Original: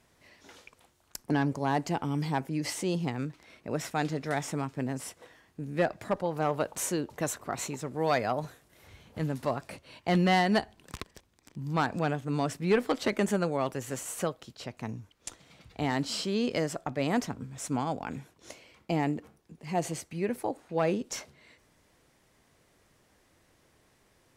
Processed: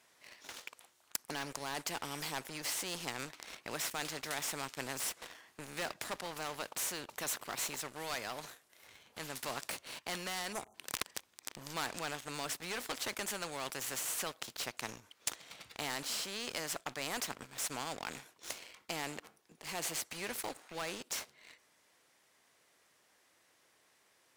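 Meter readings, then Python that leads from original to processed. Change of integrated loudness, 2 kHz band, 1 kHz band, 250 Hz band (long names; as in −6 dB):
−8.5 dB, −4.5 dB, −10.0 dB, −17.5 dB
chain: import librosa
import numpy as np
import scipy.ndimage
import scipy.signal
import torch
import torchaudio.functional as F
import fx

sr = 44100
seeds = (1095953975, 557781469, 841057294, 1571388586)

y = fx.spec_erase(x, sr, start_s=10.52, length_s=0.23, low_hz=1400.0, high_hz=5800.0)
y = fx.highpass(y, sr, hz=1000.0, slope=6)
y = fx.leveller(y, sr, passes=2)
y = fx.rider(y, sr, range_db=4, speed_s=0.5)
y = fx.spectral_comp(y, sr, ratio=2.0)
y = y * librosa.db_to_amplitude(-3.0)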